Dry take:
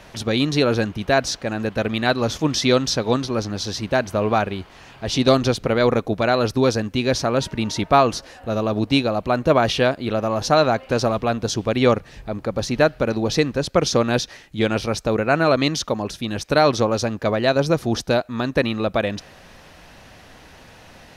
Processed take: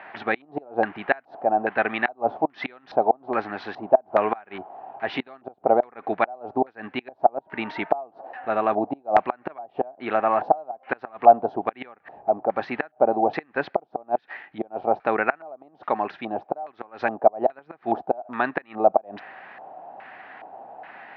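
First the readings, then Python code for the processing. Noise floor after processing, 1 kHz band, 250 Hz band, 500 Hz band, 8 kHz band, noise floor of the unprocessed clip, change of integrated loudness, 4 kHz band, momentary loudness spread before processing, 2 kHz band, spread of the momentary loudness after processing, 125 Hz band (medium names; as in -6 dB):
-61 dBFS, +1.0 dB, -10.5 dB, -4.5 dB, under -40 dB, -46 dBFS, -4.5 dB, -19.5 dB, 8 LU, -4.0 dB, 19 LU, -21.5 dB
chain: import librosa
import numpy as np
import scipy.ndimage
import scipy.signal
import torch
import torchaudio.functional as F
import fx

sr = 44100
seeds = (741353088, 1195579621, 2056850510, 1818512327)

y = fx.gate_flip(x, sr, shuts_db=-9.0, range_db=-29)
y = fx.cabinet(y, sr, low_hz=370.0, low_slope=12, high_hz=4000.0, hz=(510.0, 780.0, 2000.0, 3400.0), db=(-7, 9, -3, -3))
y = fx.filter_lfo_lowpass(y, sr, shape='square', hz=1.2, low_hz=710.0, high_hz=1900.0, q=2.9)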